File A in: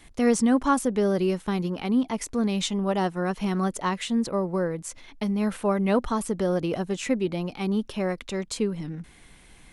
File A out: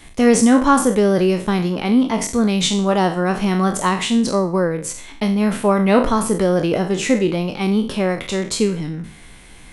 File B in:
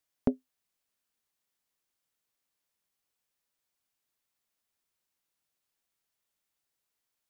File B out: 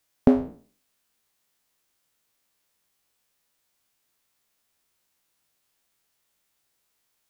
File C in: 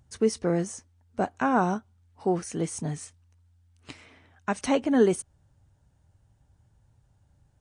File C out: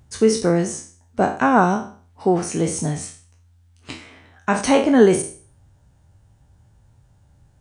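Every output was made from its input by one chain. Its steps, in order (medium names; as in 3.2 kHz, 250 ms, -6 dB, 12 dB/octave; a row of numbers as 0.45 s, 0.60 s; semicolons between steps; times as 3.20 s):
spectral sustain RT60 0.43 s; peak normalisation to -2 dBFS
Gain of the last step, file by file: +7.5 dB, +8.5 dB, +7.0 dB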